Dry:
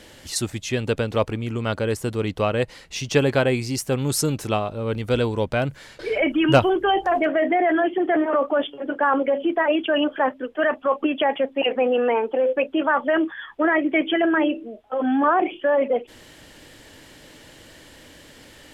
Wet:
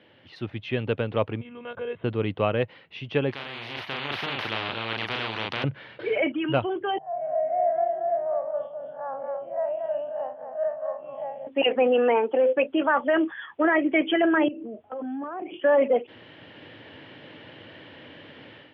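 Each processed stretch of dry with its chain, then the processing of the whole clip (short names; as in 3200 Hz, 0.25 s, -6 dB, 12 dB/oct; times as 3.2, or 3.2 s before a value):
1.41–2.04 compressor 3:1, threshold -31 dBFS + monotone LPC vocoder at 8 kHz 240 Hz + comb 1.9 ms, depth 53%
3.31–5.64 band shelf 5800 Hz +9.5 dB + doubler 36 ms -2.5 dB + spectral compressor 10:1
6.98–11.47 time blur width 0.105 s + double band-pass 310 Hz, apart 2.2 oct + echo 0.23 s -5.5 dB
14.48–15.54 tilt -2.5 dB/oct + compressor 8:1, threshold -31 dBFS
whole clip: elliptic band-pass 100–3100 Hz; AGC; gain -9 dB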